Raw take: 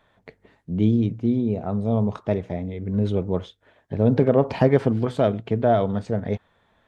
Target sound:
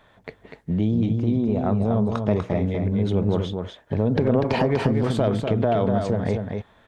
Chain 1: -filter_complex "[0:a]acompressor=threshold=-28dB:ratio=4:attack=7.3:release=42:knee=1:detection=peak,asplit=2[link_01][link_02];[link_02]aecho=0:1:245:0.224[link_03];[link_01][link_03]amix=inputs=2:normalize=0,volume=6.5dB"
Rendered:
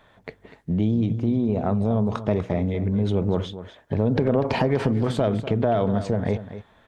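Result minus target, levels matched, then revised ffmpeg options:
echo-to-direct −7.5 dB
-filter_complex "[0:a]acompressor=threshold=-28dB:ratio=4:attack=7.3:release=42:knee=1:detection=peak,asplit=2[link_01][link_02];[link_02]aecho=0:1:245:0.531[link_03];[link_01][link_03]amix=inputs=2:normalize=0,volume=6.5dB"

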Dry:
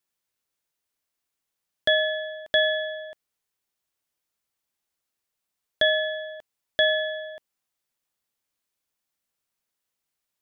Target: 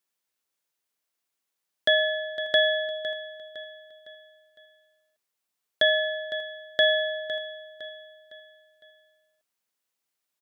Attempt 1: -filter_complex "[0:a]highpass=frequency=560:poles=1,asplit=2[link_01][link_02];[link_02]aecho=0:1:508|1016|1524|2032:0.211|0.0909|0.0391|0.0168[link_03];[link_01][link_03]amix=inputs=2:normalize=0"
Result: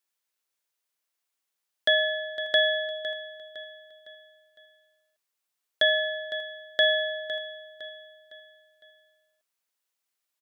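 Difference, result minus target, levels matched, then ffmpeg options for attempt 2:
250 Hz band −4.5 dB
-filter_complex "[0:a]highpass=frequency=210:poles=1,asplit=2[link_01][link_02];[link_02]aecho=0:1:508|1016|1524|2032:0.211|0.0909|0.0391|0.0168[link_03];[link_01][link_03]amix=inputs=2:normalize=0"

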